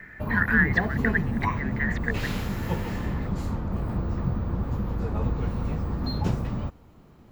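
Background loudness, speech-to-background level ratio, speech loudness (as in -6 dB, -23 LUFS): -29.0 LUFS, 1.5 dB, -27.5 LUFS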